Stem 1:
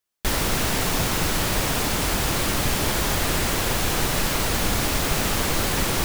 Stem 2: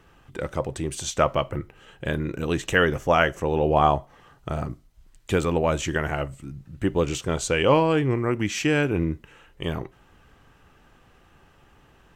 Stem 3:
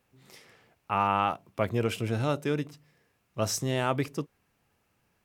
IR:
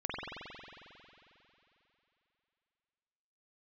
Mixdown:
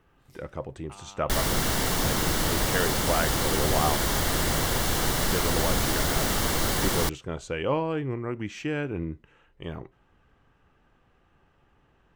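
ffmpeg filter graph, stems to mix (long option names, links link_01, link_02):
-filter_complex "[0:a]bandreject=frequency=2500:width=6.5,adelay=1050,volume=-2.5dB[link_01];[1:a]lowpass=frequency=2700:poles=1,volume=-7.5dB[link_02];[2:a]highshelf=frequency=5400:gain=6.5,acompressor=threshold=-33dB:ratio=6,volume=-12.5dB[link_03];[link_01][link_02][link_03]amix=inputs=3:normalize=0"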